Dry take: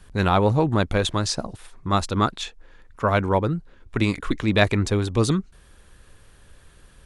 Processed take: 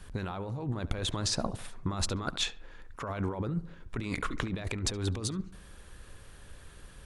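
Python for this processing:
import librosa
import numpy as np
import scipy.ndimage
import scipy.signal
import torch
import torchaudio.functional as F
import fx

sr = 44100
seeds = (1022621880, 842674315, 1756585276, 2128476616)

y = fx.over_compress(x, sr, threshold_db=-28.0, ratio=-1.0)
y = fx.echo_filtered(y, sr, ms=71, feedback_pct=49, hz=1900.0, wet_db=-15.0)
y = y * librosa.db_to_amplitude(-5.5)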